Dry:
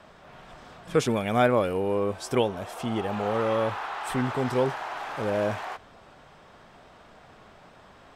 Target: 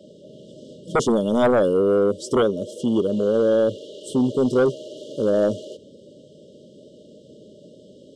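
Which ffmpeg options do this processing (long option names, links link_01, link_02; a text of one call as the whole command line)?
ffmpeg -i in.wav -filter_complex "[0:a]highpass=210,afftfilt=real='re*(1-between(b*sr/4096,630,2800))':imag='im*(1-between(b*sr/4096,630,2800))':win_size=4096:overlap=0.75,lowpass=frequency=7800:width_type=q:width=1.6,acrossover=split=620|920[link_01][link_02][link_03];[link_01]aeval=exprs='0.2*sin(PI/2*2.82*val(0)/0.2)':channel_layout=same[link_04];[link_04][link_02][link_03]amix=inputs=3:normalize=0" out.wav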